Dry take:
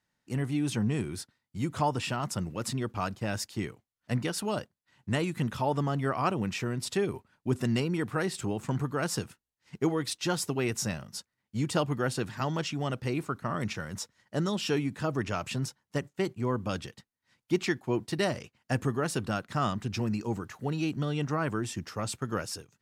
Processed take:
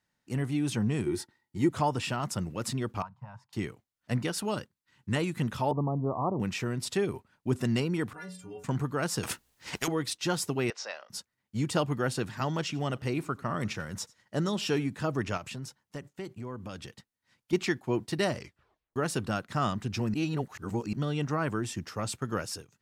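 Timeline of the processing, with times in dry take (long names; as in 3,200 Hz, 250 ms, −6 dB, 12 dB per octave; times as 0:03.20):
0:01.06–0:01.69: hollow resonant body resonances 350/870/1,900 Hz, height 13 dB
0:03.02–0:03.53: pair of resonant band-passes 360 Hz, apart 2.8 octaves
0:04.54–0:05.16: parametric band 670 Hz −12 dB 0.41 octaves
0:05.71–0:06.40: Butterworth low-pass 1,100 Hz 72 dB per octave
0:08.13–0:08.64: stiff-string resonator 86 Hz, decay 0.6 s, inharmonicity 0.03
0:09.23–0:09.88: every bin compressed towards the loudest bin 4 to 1
0:10.70–0:11.10: Chebyshev band-pass filter 520–5,000 Hz, order 3
0:12.60–0:14.86: single-tap delay 91 ms −23 dB
0:15.37–0:17.53: downward compressor 2.5 to 1, threshold −39 dBFS
0:18.37: tape stop 0.59 s
0:20.14–0:20.93: reverse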